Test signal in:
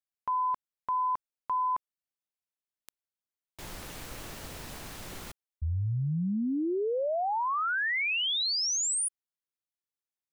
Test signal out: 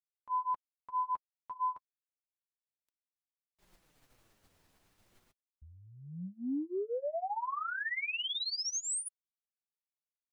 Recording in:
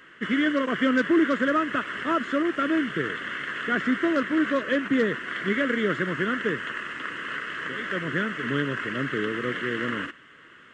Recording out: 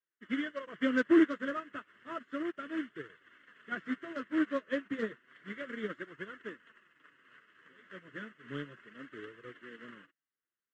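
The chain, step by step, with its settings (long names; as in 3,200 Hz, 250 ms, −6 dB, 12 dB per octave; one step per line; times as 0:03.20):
flanger 0.32 Hz, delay 1.7 ms, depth 9.8 ms, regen −26%
expander for the loud parts 2.5 to 1, over −49 dBFS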